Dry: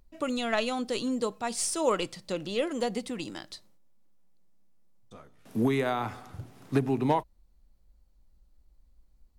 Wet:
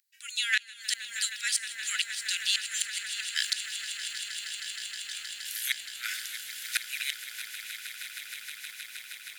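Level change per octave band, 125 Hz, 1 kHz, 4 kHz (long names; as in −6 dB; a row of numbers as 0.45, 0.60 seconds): below −40 dB, −17.5 dB, +10.0 dB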